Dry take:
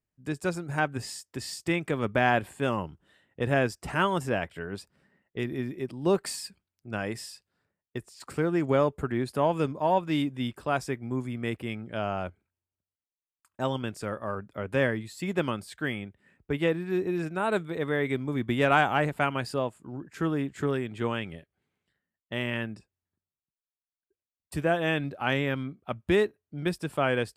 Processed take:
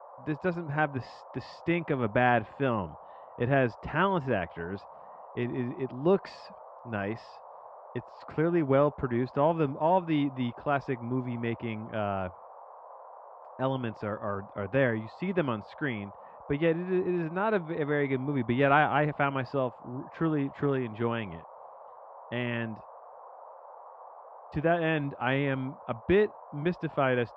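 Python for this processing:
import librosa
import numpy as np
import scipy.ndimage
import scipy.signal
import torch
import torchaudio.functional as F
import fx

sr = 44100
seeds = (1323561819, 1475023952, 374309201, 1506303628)

y = fx.dmg_noise_band(x, sr, seeds[0], low_hz=510.0, high_hz=1100.0, level_db=-48.0)
y = scipy.ndimage.gaussian_filter1d(y, 2.5, mode='constant')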